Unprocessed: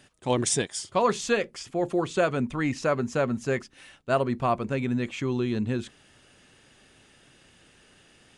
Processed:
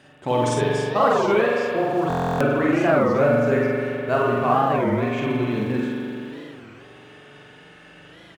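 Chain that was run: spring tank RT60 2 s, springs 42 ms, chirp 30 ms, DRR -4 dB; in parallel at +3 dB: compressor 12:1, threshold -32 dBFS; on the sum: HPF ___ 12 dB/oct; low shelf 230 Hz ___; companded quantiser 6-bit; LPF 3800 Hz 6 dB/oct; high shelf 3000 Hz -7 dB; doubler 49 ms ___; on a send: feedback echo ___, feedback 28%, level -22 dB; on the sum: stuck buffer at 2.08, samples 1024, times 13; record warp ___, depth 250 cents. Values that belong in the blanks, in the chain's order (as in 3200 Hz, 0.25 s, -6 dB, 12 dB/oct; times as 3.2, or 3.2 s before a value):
53 Hz, -6 dB, -3.5 dB, 0.75 s, 33 1/3 rpm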